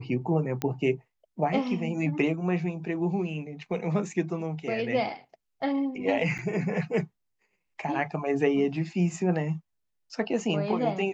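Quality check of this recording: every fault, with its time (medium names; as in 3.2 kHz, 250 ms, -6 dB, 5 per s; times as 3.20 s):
0.62 s: pop -15 dBFS
6.38–6.39 s: dropout 7.3 ms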